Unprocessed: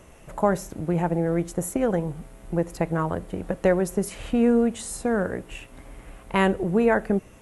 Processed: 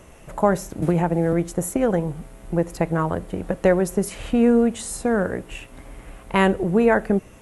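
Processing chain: 0.82–1.33 three-band squash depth 100%; gain +3 dB

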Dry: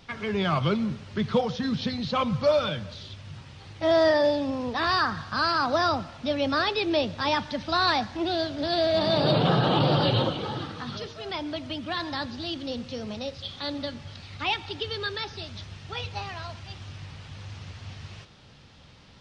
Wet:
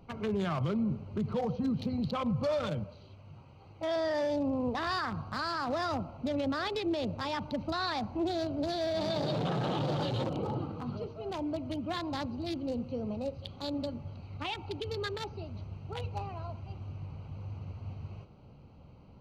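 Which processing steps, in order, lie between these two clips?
Wiener smoothing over 25 samples; 2.84–3.96 low shelf 370 Hz -10 dB; limiter -24.5 dBFS, peak gain reduction 11 dB

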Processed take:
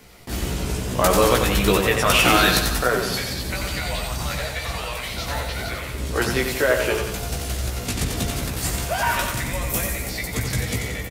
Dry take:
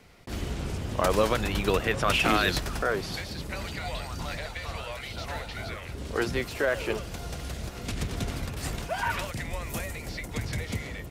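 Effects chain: high shelf 7700 Hz +12 dB; doubler 16 ms -4 dB; on a send: feedback echo 90 ms, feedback 53%, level -6 dB; on the sum: gain +4.5 dB

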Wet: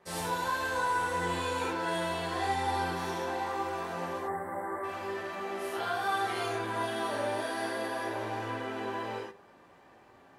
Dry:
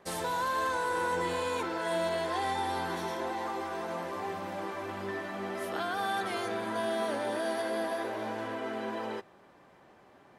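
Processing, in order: notches 50/100/150/200/250/300/350/400/450/500 Hz; spectral gain 4.17–4.84, 2200–7400 Hz -28 dB; non-linear reverb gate 0.13 s flat, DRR -6.5 dB; gain -6 dB

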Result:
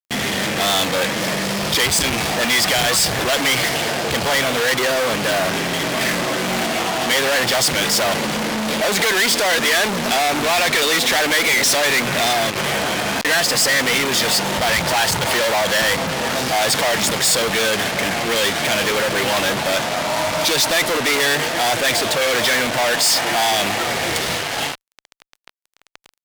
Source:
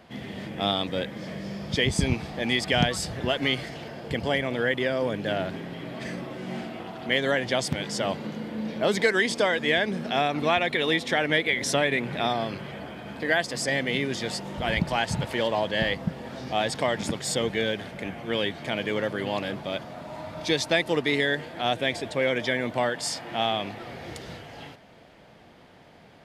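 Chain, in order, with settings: 12.5–13.25 negative-ratio compressor -37 dBFS, ratio -0.5; fuzz box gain 46 dB, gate -43 dBFS; low shelf 440 Hz -11.5 dB

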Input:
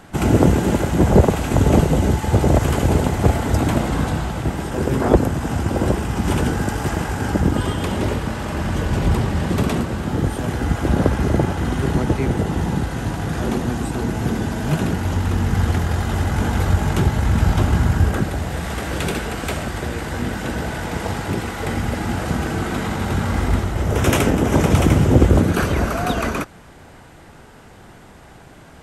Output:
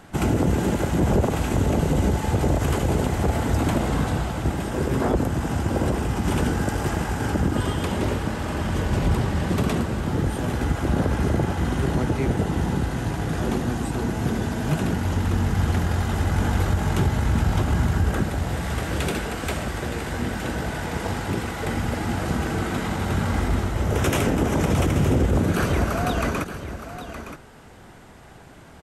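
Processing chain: limiter -9 dBFS, peak gain reduction 7.5 dB; echo 0.917 s -11 dB; gain -3 dB

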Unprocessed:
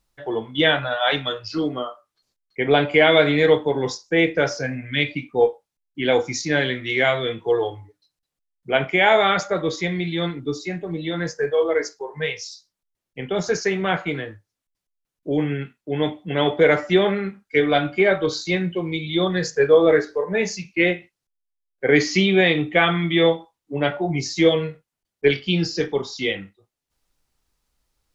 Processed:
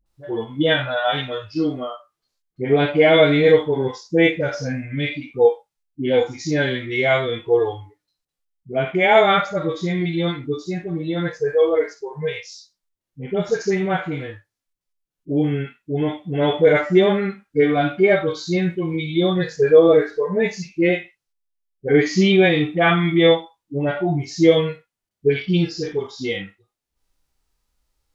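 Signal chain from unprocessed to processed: dispersion highs, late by 60 ms, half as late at 610 Hz; harmonic-percussive split percussive -17 dB; gain +3.5 dB

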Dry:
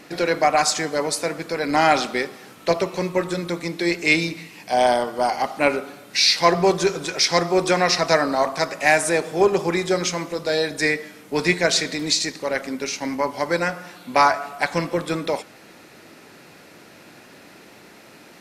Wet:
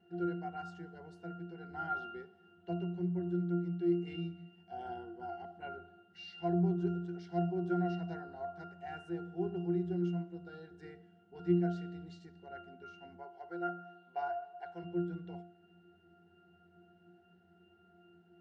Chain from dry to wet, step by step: 13.16–14.83 resonant low shelf 330 Hz -12.5 dB, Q 1.5; octave resonator F, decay 0.5 s

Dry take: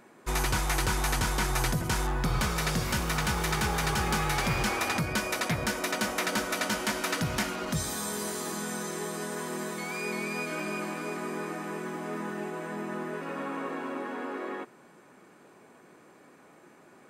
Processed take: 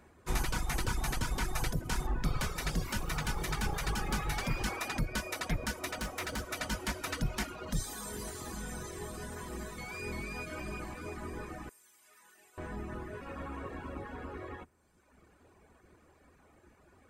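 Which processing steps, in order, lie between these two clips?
octaver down 2 oct, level +4 dB; 11.69–12.58 differentiator; reverb removal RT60 1.2 s; 5.92–6.53 hard clip -26.5 dBFS, distortion -25 dB; gain -5.5 dB

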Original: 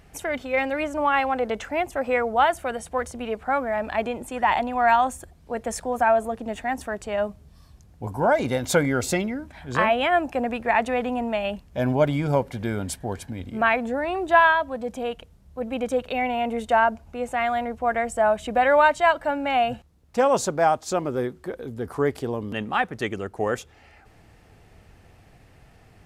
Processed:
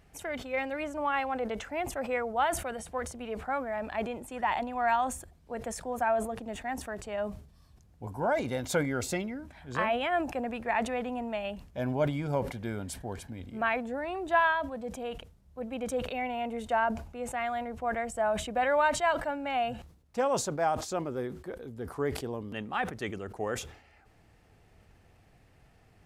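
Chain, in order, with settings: sustainer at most 100 dB/s; gain -8.5 dB

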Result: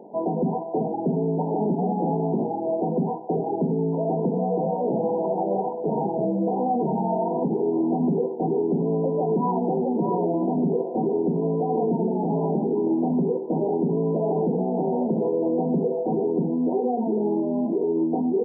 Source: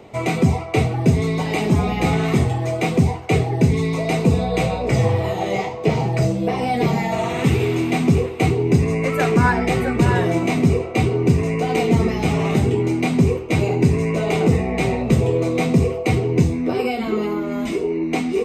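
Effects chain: brick-wall FIR band-pass 160–1000 Hz; limiter -15.5 dBFS, peak gain reduction 9 dB

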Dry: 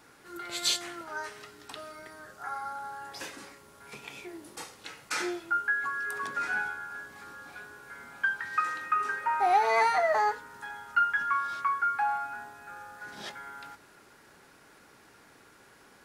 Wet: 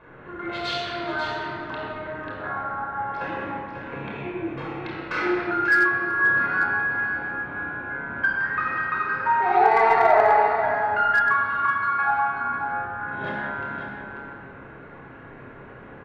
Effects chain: Wiener smoothing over 9 samples; high shelf 4700 Hz -2.5 dB; in parallel at +3 dB: compressor 4:1, threshold -41 dBFS, peak gain reduction 18 dB; on the sum: air absorption 310 m; doubler 30 ms -8 dB; on a send: echo 0.54 s -8 dB; on the sum: shoebox room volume 3600 m³, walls mixed, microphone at 5.3 m; slew limiter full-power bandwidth 340 Hz

